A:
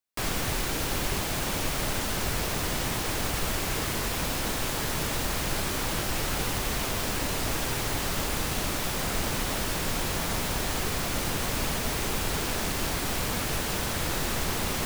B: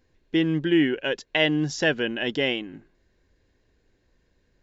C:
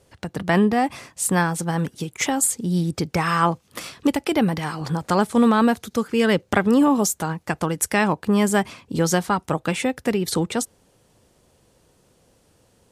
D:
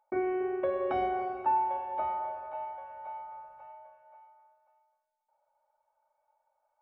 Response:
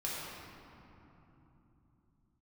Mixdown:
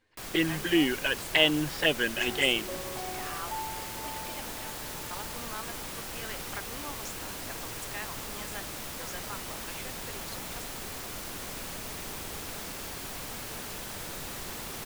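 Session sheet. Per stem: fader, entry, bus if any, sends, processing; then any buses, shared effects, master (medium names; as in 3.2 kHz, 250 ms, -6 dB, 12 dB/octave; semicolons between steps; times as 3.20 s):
-11.5 dB, 0.00 s, no send, echo send -3.5 dB, treble shelf 7.2 kHz +4 dB
+2.0 dB, 0.00 s, no send, no echo send, tilt shelf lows -6 dB; touch-sensitive flanger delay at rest 9.5 ms, full sweep at -18.5 dBFS; boxcar filter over 7 samples
-16.0 dB, 0.00 s, no send, no echo send, band-pass filter 2.7 kHz, Q 0.58
-10.0 dB, 2.05 s, no send, no echo send, none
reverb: none
echo: delay 218 ms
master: bass shelf 160 Hz -5 dB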